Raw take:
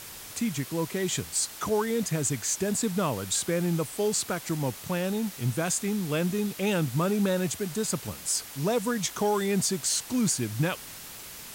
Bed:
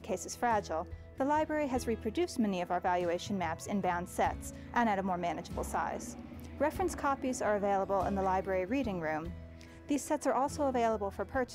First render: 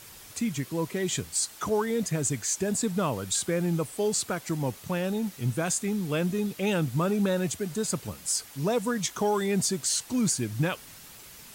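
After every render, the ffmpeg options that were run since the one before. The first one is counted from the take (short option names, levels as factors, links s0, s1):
-af "afftdn=nr=6:nf=-43"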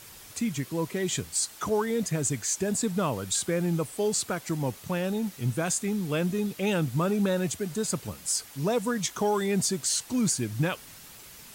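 -af anull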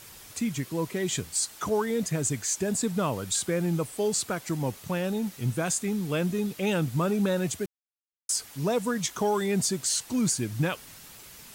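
-filter_complex "[0:a]asplit=3[s0][s1][s2];[s0]atrim=end=7.66,asetpts=PTS-STARTPTS,afade=t=out:st=7.656:d=0.004:c=hsin[s3];[s1]atrim=start=7.66:end=8.29,asetpts=PTS-STARTPTS,volume=0[s4];[s2]atrim=start=8.29,asetpts=PTS-STARTPTS,afade=t=in:d=0.004:c=hsin[s5];[s3][s4][s5]concat=n=3:v=0:a=1"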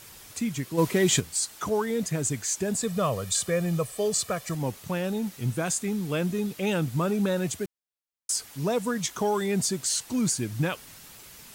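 -filter_complex "[0:a]asplit=3[s0][s1][s2];[s0]afade=t=out:st=0.77:d=0.02[s3];[s1]acontrast=88,afade=t=in:st=0.77:d=0.02,afade=t=out:st=1.19:d=0.02[s4];[s2]afade=t=in:st=1.19:d=0.02[s5];[s3][s4][s5]amix=inputs=3:normalize=0,asettb=1/sr,asplit=3[s6][s7][s8];[s6]atrim=end=2.824[s9];[s7]atrim=start=2.82:end=4.55,asetpts=PTS-STARTPTS,afade=t=in:d=0.004:c=qsin,afade=t=out:st=1.726:d=0.004:c=qsin,aecho=1:1:1.7:0.65,atrim=end_sample=76293[s10];[s8]atrim=start=4.546[s11];[s9][s10]acrossfade=d=0.004:c1=hsin:c2=qsin[s12];[s12][s11]acrossfade=d=0.004:c1=qsin:c2=hsin"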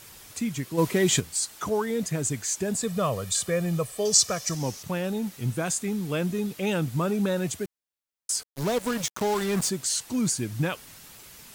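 -filter_complex "[0:a]asettb=1/sr,asplit=3[s0][s1][s2];[s0]atrim=end=4.054[s3];[s1]atrim=start=4.05:end=4.83,asetpts=PTS-STARTPTS,afade=t=in:d=0.004:c=qsin,afade=t=out:st=0.776:d=0.004:c=qsin,equalizer=f=5700:w=1.9:g=15[s4];[s2]atrim=start=4.826[s5];[s3][s4]acrossfade=d=0.004:c1=hsin:c2=qsin[s6];[s6][s5]acrossfade=d=0.004:c1=qsin:c2=hsin,asettb=1/sr,asplit=3[s7][s8][s9];[s7]atrim=end=8.434[s10];[s8]atrim=start=8.43:end=9.7,asetpts=PTS-STARTPTS,afade=t=in:d=0.004:c=qsin,afade=t=out:st=1.266:d=0.004:c=qsin,acrusher=bits=4:mix=0:aa=0.5[s11];[s9]atrim=start=9.696[s12];[s10][s11]acrossfade=d=0.004:c1=hsin:c2=qsin[s13];[s13][s12]acrossfade=d=0.004:c1=qsin:c2=hsin"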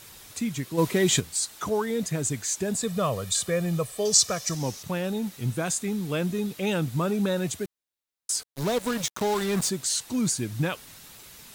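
-af "equalizer=f=3800:w=7.9:g=4.5"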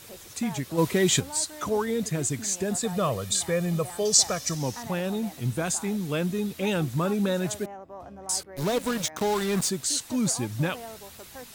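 -filter_complex "[1:a]volume=0.282[s0];[0:a][s0]amix=inputs=2:normalize=0"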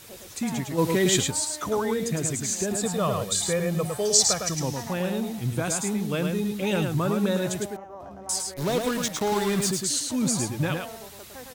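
-af "aecho=1:1:107:0.596"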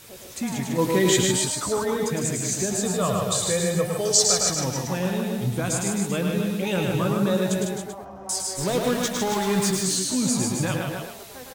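-filter_complex "[0:a]asplit=2[s0][s1];[s1]adelay=16,volume=0.266[s2];[s0][s2]amix=inputs=2:normalize=0,aecho=1:1:151.6|279.9:0.562|0.398"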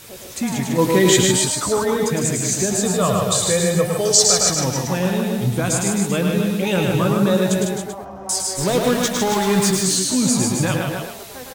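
-af "volume=1.88,alimiter=limit=0.891:level=0:latency=1"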